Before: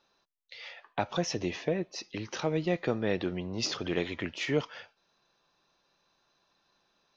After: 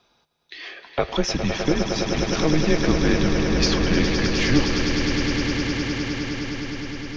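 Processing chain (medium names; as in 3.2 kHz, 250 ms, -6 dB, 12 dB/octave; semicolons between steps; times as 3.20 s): echo with a slow build-up 103 ms, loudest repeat 8, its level -9 dB; frequency shift -160 Hz; trim +8.5 dB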